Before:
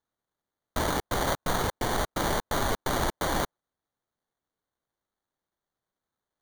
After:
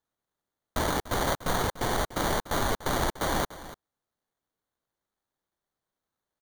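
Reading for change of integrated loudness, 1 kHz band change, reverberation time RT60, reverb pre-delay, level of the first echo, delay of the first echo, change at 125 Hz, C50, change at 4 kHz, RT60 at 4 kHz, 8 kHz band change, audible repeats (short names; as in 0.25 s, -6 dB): 0.0 dB, 0.0 dB, none, none, -15.5 dB, 0.293 s, 0.0 dB, none, 0.0 dB, none, 0.0 dB, 1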